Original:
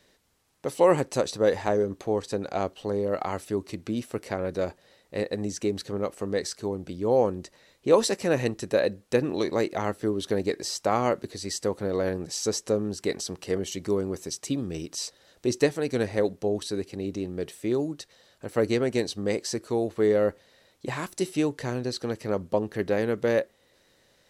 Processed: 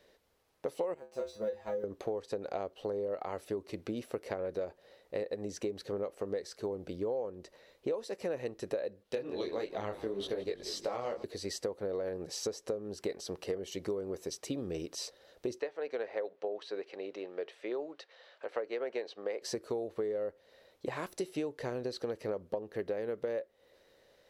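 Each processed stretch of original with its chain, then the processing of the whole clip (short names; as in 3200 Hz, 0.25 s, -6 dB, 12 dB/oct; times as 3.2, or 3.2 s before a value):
0.94–1.84 G.711 law mismatch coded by A + low shelf 120 Hz +6.5 dB + resonator 73 Hz, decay 0.21 s, harmonics odd, mix 100%
9.03–11.24 bell 3400 Hz +7.5 dB 0.96 oct + frequency-shifting echo 0.173 s, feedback 60%, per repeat -35 Hz, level -16 dB + detuned doubles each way 22 cents
15.6–19.42 BPF 570–3000 Hz + mismatched tape noise reduction encoder only
whole clip: graphic EQ 125/250/500/8000 Hz -4/-3/+8/-7 dB; compressor 12:1, threshold -28 dBFS; gain -4 dB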